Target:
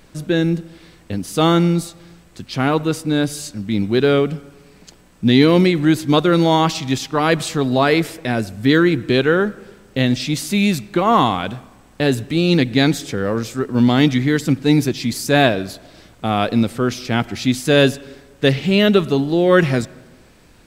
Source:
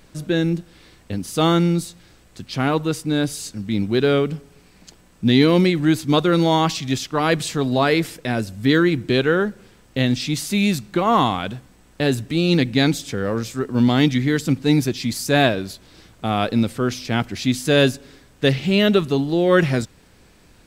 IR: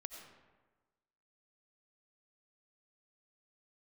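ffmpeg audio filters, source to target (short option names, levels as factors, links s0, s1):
-filter_complex "[0:a]asplit=2[s0][s1];[s1]highpass=120,lowpass=3800[s2];[1:a]atrim=start_sample=2205[s3];[s2][s3]afir=irnorm=-1:irlink=0,volume=0.282[s4];[s0][s4]amix=inputs=2:normalize=0,volume=1.19"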